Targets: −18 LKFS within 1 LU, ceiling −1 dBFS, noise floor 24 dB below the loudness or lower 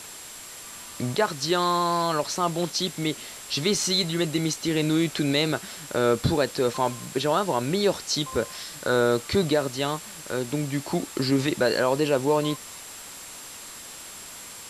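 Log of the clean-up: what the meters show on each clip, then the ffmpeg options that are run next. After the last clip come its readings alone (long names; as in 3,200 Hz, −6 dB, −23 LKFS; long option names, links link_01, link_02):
interfering tone 7,600 Hz; level of the tone −45 dBFS; background noise floor −41 dBFS; target noise floor −49 dBFS; integrated loudness −25.0 LKFS; sample peak −10.0 dBFS; target loudness −18.0 LKFS
→ -af "bandreject=frequency=7600:width=30"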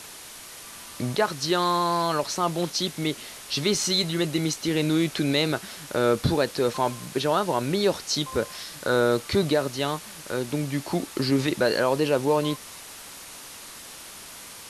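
interfering tone none found; background noise floor −43 dBFS; target noise floor −49 dBFS
→ -af "afftdn=noise_reduction=6:noise_floor=-43"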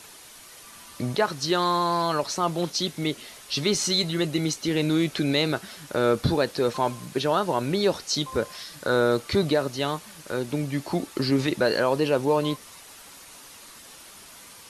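background noise floor −47 dBFS; target noise floor −50 dBFS
→ -af "afftdn=noise_reduction=6:noise_floor=-47"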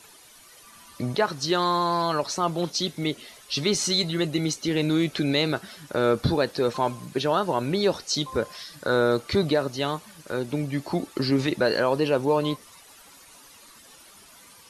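background noise floor −51 dBFS; integrated loudness −25.5 LKFS; sample peak −10.5 dBFS; target loudness −18.0 LKFS
→ -af "volume=7.5dB"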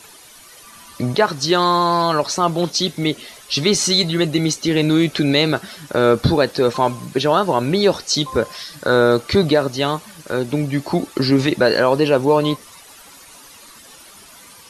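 integrated loudness −18.0 LKFS; sample peak −3.0 dBFS; background noise floor −44 dBFS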